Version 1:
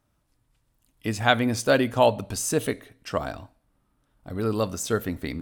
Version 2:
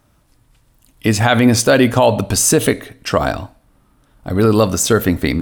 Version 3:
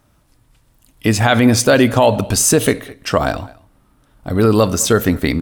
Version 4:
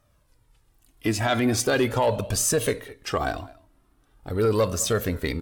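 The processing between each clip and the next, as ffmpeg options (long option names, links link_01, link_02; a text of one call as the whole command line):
ffmpeg -i in.wav -af "alimiter=level_in=15.5dB:limit=-1dB:release=50:level=0:latency=1,volume=-1dB" out.wav
ffmpeg -i in.wav -filter_complex "[0:a]asplit=2[link_01][link_02];[link_02]adelay=209.9,volume=-22dB,highshelf=frequency=4000:gain=-4.72[link_03];[link_01][link_03]amix=inputs=2:normalize=0" out.wav
ffmpeg -i in.wav -af "flanger=delay=1.6:depth=1.5:regen=27:speed=0.41:shape=triangular,asoftclip=type=tanh:threshold=-7.5dB,volume=-4.5dB" -ar 44100 -c:a aac -b:a 96k out.aac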